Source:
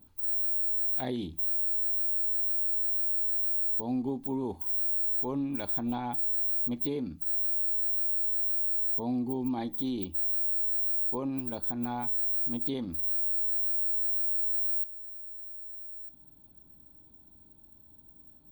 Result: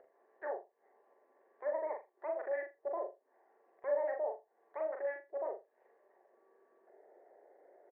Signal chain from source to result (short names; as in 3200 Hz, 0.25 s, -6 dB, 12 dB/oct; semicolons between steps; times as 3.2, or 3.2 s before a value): Chebyshev band-pass 160–750 Hz, order 4; comb 0.9 ms, depth 68%; upward compressor, threshold -50 dBFS; feedback echo 96 ms, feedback 30%, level -4 dB; speed mistake 33 rpm record played at 78 rpm; gain -5.5 dB